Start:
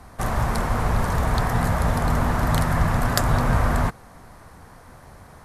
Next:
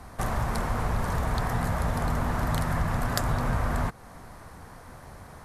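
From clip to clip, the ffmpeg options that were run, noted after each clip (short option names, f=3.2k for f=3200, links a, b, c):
-af "acompressor=threshold=-28dB:ratio=2"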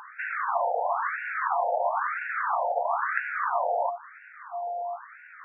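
-af "aeval=exprs='val(0)+0.0126*sin(2*PI*700*n/s)':c=same,afftfilt=real='re*between(b*sr/1024,630*pow(2000/630,0.5+0.5*sin(2*PI*1*pts/sr))/1.41,630*pow(2000/630,0.5+0.5*sin(2*PI*1*pts/sr))*1.41)':imag='im*between(b*sr/1024,630*pow(2000/630,0.5+0.5*sin(2*PI*1*pts/sr))/1.41,630*pow(2000/630,0.5+0.5*sin(2*PI*1*pts/sr))*1.41)':win_size=1024:overlap=0.75,volume=9dB"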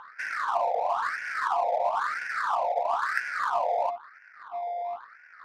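-af "adynamicsmooth=sensitivity=6.5:basefreq=1.4k"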